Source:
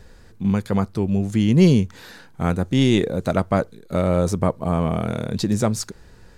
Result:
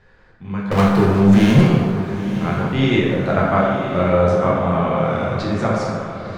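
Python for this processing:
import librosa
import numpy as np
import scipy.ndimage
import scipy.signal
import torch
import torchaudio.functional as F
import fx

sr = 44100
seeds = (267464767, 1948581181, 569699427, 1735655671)

p1 = scipy.signal.sosfilt(scipy.signal.butter(2, 1800.0, 'lowpass', fs=sr, output='sos'), x)
p2 = fx.tilt_shelf(p1, sr, db=-8.5, hz=920.0)
p3 = fx.leveller(p2, sr, passes=5, at=(0.71, 1.61))
p4 = fx.rider(p3, sr, range_db=3, speed_s=0.5)
p5 = p4 + fx.echo_diffused(p4, sr, ms=940, feedback_pct=54, wet_db=-11, dry=0)
p6 = fx.rev_plate(p5, sr, seeds[0], rt60_s=1.7, hf_ratio=0.5, predelay_ms=0, drr_db=-4.5)
y = p6 * librosa.db_to_amplitude(-2.0)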